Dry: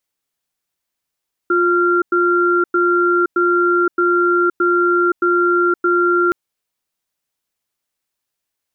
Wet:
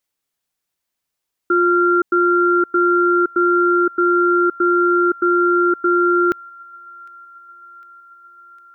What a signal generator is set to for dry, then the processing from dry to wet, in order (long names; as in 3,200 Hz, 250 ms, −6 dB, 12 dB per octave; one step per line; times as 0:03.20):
tone pair in a cadence 352 Hz, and 1,380 Hz, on 0.52 s, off 0.10 s, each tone −14.5 dBFS 4.82 s
delay with a high-pass on its return 755 ms, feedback 73%, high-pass 1,400 Hz, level −23.5 dB